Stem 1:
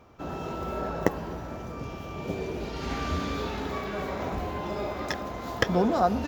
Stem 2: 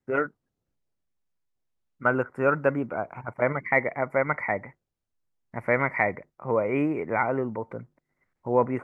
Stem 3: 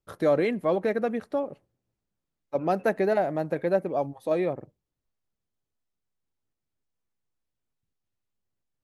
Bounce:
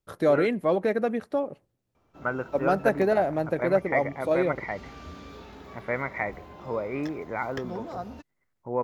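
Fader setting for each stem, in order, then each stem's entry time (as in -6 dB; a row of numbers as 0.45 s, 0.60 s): -13.0 dB, -6.0 dB, +1.0 dB; 1.95 s, 0.20 s, 0.00 s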